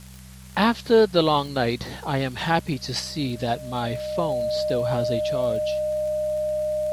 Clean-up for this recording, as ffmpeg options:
-af "adeclick=t=4,bandreject=f=63.9:t=h:w=4,bandreject=f=127.8:t=h:w=4,bandreject=f=191.7:t=h:w=4,bandreject=f=610:w=30,afwtdn=0.0035"

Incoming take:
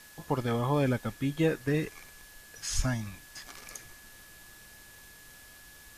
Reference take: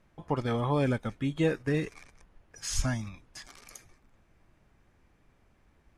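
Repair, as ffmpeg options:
-af "bandreject=f=1700:w=30,afwtdn=0.0022,asetnsamples=n=441:p=0,asendcmd='3.48 volume volume -4dB',volume=1"

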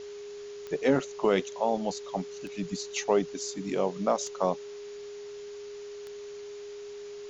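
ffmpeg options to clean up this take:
-af "adeclick=t=4,bandreject=f=410:w=30,afwtdn=0.0032"

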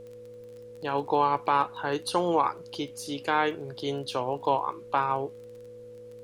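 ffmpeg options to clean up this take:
-af "adeclick=t=4,bandreject=f=111.5:t=h:w=4,bandreject=f=223:t=h:w=4,bandreject=f=334.5:t=h:w=4,bandreject=f=446:t=h:w=4,bandreject=f=557.5:t=h:w=4,bandreject=f=490:w=30,agate=range=0.0891:threshold=0.0126"

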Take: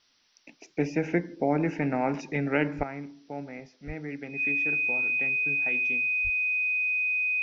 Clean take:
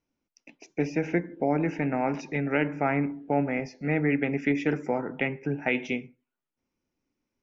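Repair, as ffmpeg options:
-filter_complex "[0:a]bandreject=f=2500:w=30,asplit=3[s0][s1][s2];[s0]afade=t=out:st=2.77:d=0.02[s3];[s1]highpass=f=140:w=0.5412,highpass=f=140:w=1.3066,afade=t=in:st=2.77:d=0.02,afade=t=out:st=2.89:d=0.02[s4];[s2]afade=t=in:st=2.89:d=0.02[s5];[s3][s4][s5]amix=inputs=3:normalize=0,asplit=3[s6][s7][s8];[s6]afade=t=out:st=3.86:d=0.02[s9];[s7]highpass=f=140:w=0.5412,highpass=f=140:w=1.3066,afade=t=in:st=3.86:d=0.02,afade=t=out:st=3.98:d=0.02[s10];[s8]afade=t=in:st=3.98:d=0.02[s11];[s9][s10][s11]amix=inputs=3:normalize=0,asplit=3[s12][s13][s14];[s12]afade=t=out:st=6.23:d=0.02[s15];[s13]highpass=f=140:w=0.5412,highpass=f=140:w=1.3066,afade=t=in:st=6.23:d=0.02,afade=t=out:st=6.35:d=0.02[s16];[s14]afade=t=in:st=6.35:d=0.02[s17];[s15][s16][s17]amix=inputs=3:normalize=0,agate=range=0.0891:threshold=0.00282,asetnsamples=n=441:p=0,asendcmd='2.83 volume volume 12dB',volume=1"

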